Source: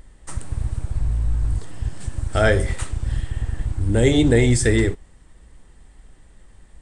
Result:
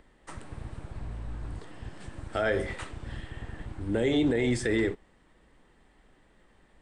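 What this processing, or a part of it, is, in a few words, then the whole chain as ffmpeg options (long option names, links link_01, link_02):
DJ mixer with the lows and highs turned down: -filter_complex "[0:a]acrossover=split=180 4200:gain=0.2 1 0.2[link_01][link_02][link_03];[link_01][link_02][link_03]amix=inputs=3:normalize=0,alimiter=limit=-14dB:level=0:latency=1:release=49,volume=-3.5dB"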